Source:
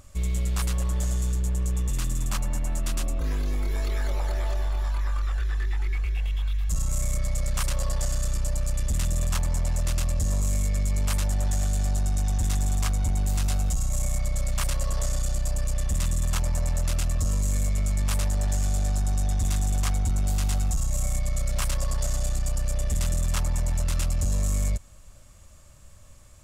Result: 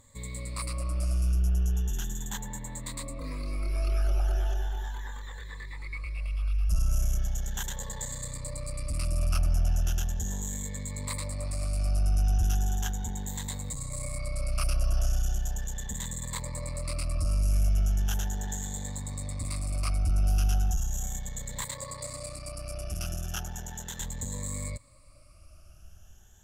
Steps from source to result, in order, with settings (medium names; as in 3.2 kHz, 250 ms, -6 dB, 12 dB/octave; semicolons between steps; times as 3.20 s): drifting ripple filter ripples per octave 1, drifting +0.37 Hz, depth 17 dB; 21.64–24.00 s: high-pass 160 Hz 6 dB/octave; trim -7.5 dB